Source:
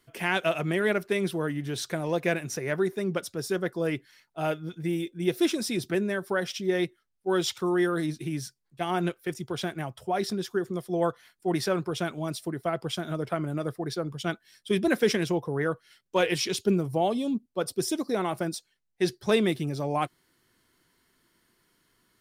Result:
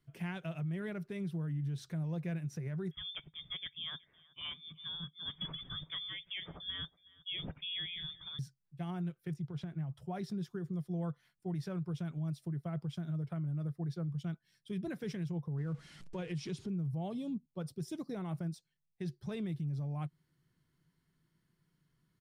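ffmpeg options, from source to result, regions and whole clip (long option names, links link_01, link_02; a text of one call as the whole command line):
ffmpeg -i in.wav -filter_complex "[0:a]asettb=1/sr,asplit=3[link_01][link_02][link_03];[link_01]atrim=end=2.914[link_04];[link_02]atrim=start=2.91:end=8.39,asetpts=PTS-STARTPTS,afade=type=in:duration=0.004:curve=qsin,afade=type=out:start_time=5.476:duration=0.004:curve=qsin,lowpass=frequency=3100:width_type=q:width=0.5098,lowpass=frequency=3100:width_type=q:width=0.6013,lowpass=frequency=3100:width_type=q:width=0.9,lowpass=frequency=3100:width_type=q:width=2.563,afreqshift=-3700,lowshelf=frequency=470:gain=10.5,aecho=1:1:371:0.0668,atrim=end_sample=241668[link_05];[link_03]atrim=start=8.386[link_06];[link_04][link_05]acrossfade=duration=0.004:curve1=hsin:curve2=qsin[link_07];[link_07][link_06]acrossfade=duration=0.004:curve1=qsin:curve2=hsin,asettb=1/sr,asplit=3[link_08][link_09][link_10];[link_08]atrim=end=9.364[link_11];[link_09]atrim=start=9.36:end=9.95,asetpts=PTS-STARTPTS,afade=type=in:duration=0.004:curve=qsin,afade=type=out:start_time=0.586:duration=0.004:curve=qsin,lowpass=frequency=3500:poles=1,acompressor=threshold=-33dB:ratio=6:attack=3.2:release=140:knee=1:detection=peak[link_12];[link_10]atrim=start=9.946[link_13];[link_11][link_12]acrossfade=duration=0.004:curve1=hsin:curve2=qsin[link_14];[link_14][link_13]acrossfade=duration=0.004:curve1=qsin:curve2=hsin,asettb=1/sr,asplit=3[link_15][link_16][link_17];[link_15]atrim=end=15.584[link_18];[link_16]atrim=start=15.58:end=16.69,asetpts=PTS-STARTPTS,afade=type=in:duration=0.004:curve=qsin,afade=type=out:start_time=1.106:duration=0.004:curve=qsin,aeval=exprs='val(0)+0.5*0.0141*sgn(val(0))':channel_layout=same,lowpass=frequency=10000:width=0.5412,lowpass=frequency=10000:width=1.3066,equalizer=frequency=260:width=1.1:gain=4.5[link_19];[link_17]atrim=start=16.686[link_20];[link_18][link_19]acrossfade=duration=0.004:curve1=hsin:curve2=qsin[link_21];[link_21][link_20]acrossfade=duration=0.004:curve1=qsin:curve2=hsin,firequalizer=gain_entry='entry(110,0);entry(150,12);entry(220,-5);entry(430,-10);entry(9600,-14)':delay=0.05:min_phase=1,alimiter=level_in=3.5dB:limit=-24dB:level=0:latency=1:release=142,volume=-3.5dB,volume=-4dB" out.wav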